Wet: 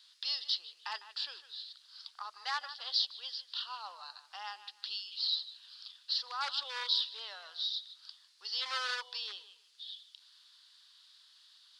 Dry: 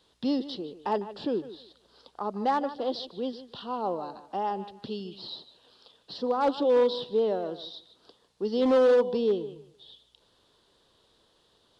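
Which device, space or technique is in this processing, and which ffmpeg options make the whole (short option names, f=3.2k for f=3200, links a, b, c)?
headphones lying on a table: -af "highpass=f=1.4k:w=0.5412,highpass=f=1.4k:w=1.3066,equalizer=f=4.7k:t=o:w=0.57:g=9,volume=2.5dB"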